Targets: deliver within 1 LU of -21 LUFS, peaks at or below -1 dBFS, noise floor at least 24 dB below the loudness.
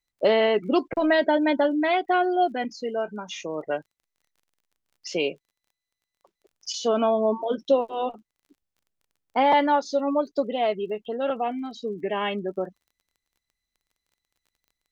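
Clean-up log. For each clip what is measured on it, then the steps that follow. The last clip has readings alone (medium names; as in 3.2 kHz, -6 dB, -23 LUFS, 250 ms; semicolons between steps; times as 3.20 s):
tick rate 24 per s; loudness -25.0 LUFS; peak level -9.5 dBFS; loudness target -21.0 LUFS
-> de-click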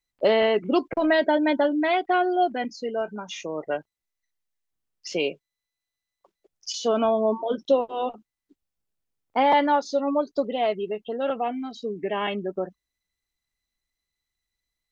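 tick rate 0 per s; loudness -25.0 LUFS; peak level -9.5 dBFS; loudness target -21.0 LUFS
-> trim +4 dB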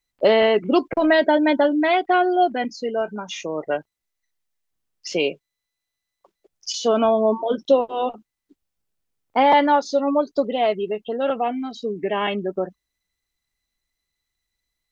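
loudness -21.0 LUFS; peak level -5.5 dBFS; noise floor -83 dBFS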